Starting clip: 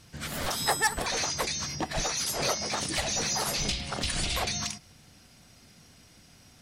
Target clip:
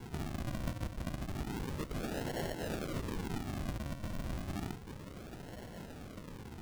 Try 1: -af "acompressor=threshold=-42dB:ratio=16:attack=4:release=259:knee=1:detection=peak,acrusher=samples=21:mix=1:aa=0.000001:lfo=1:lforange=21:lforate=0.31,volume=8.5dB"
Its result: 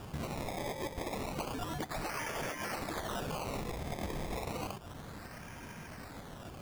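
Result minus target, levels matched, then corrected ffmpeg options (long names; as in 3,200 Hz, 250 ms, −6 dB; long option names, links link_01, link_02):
sample-and-hold swept by an LFO: distortion −7 dB
-af "acompressor=threshold=-42dB:ratio=16:attack=4:release=259:knee=1:detection=peak,acrusher=samples=71:mix=1:aa=0.000001:lfo=1:lforange=71:lforate=0.31,volume=8.5dB"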